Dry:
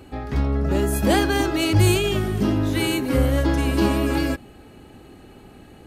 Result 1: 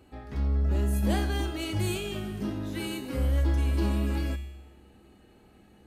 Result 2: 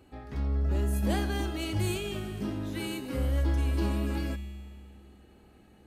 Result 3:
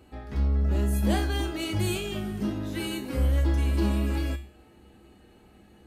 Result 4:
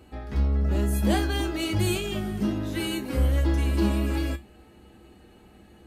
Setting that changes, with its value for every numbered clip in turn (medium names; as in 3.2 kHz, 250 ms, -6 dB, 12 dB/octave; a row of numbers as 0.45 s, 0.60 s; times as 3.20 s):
feedback comb, decay: 0.99 s, 2.1 s, 0.41 s, 0.18 s